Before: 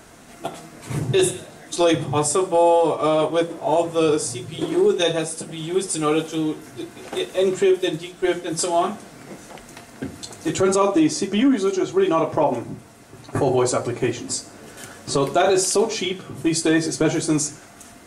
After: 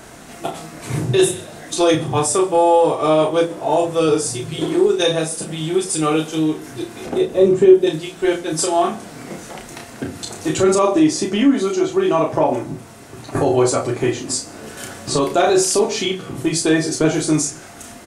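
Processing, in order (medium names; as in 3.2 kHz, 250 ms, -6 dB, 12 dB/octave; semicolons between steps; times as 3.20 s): 7.06–7.87 s: tilt shelf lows +8 dB, about 770 Hz; in parallel at -1 dB: compression, threshold -31 dBFS, peak gain reduction 20.5 dB; on the sum: doubling 32 ms -5 dB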